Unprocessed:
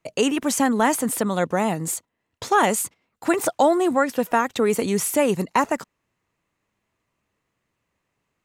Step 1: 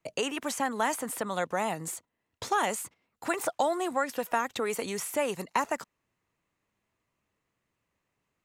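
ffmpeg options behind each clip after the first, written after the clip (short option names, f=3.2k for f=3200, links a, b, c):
-filter_complex "[0:a]acrossover=split=530|2700[a][b][c];[a]acompressor=threshold=-34dB:ratio=4[d];[b]acompressor=threshold=-20dB:ratio=4[e];[c]acompressor=threshold=-31dB:ratio=4[f];[d][e][f]amix=inputs=3:normalize=0,volume=-4.5dB"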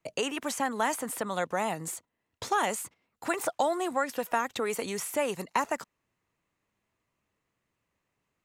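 -af anull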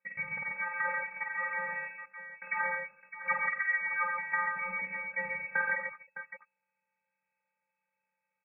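-af "afftfilt=real='hypot(re,im)*cos(PI*b)':imag='0':win_size=512:overlap=0.75,lowpass=f=2.2k:t=q:w=0.5098,lowpass=f=2.2k:t=q:w=0.6013,lowpass=f=2.2k:t=q:w=0.9,lowpass=f=2.2k:t=q:w=2.563,afreqshift=-2600,aecho=1:1:49|89|119|138|610:0.631|0.266|0.422|0.562|0.251"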